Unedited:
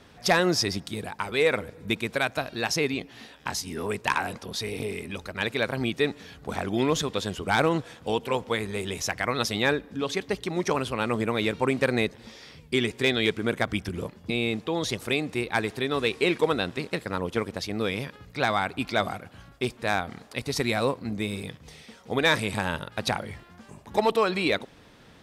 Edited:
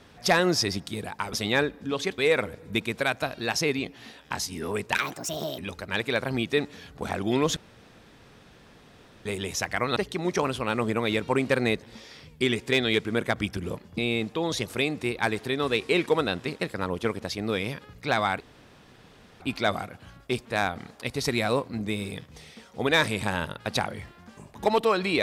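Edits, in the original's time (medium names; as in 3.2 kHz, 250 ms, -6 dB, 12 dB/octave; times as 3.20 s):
4.10–5.05 s: speed 150%
7.03–8.72 s: room tone
9.43–10.28 s: move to 1.33 s
18.72 s: insert room tone 1.00 s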